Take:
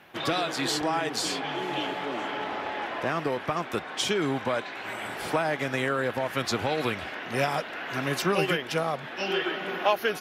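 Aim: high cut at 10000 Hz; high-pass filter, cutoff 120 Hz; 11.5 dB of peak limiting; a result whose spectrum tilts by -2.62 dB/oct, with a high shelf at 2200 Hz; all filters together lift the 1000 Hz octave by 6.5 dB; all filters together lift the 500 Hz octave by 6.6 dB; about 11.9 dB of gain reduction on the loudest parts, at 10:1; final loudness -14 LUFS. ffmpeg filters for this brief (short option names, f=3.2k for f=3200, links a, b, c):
-af "highpass=120,lowpass=10k,equalizer=f=500:t=o:g=6.5,equalizer=f=1k:t=o:g=4.5,highshelf=f=2.2k:g=8.5,acompressor=threshold=-23dB:ratio=10,volume=18dB,alimiter=limit=-5.5dB:level=0:latency=1"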